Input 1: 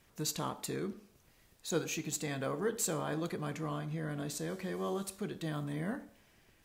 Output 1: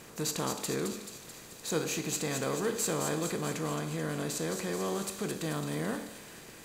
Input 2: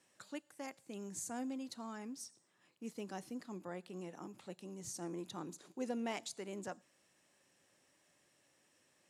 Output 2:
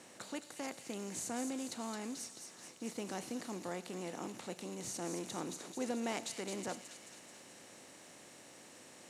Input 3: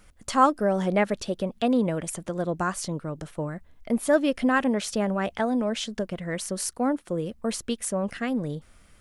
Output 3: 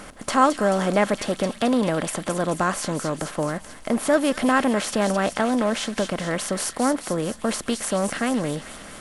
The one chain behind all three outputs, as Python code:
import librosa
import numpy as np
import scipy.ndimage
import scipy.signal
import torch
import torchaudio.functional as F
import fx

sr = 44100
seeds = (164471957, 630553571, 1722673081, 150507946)

y = fx.bin_compress(x, sr, power=0.6)
y = fx.echo_wet_highpass(y, sr, ms=217, feedback_pct=64, hz=2700.0, wet_db=-5.5)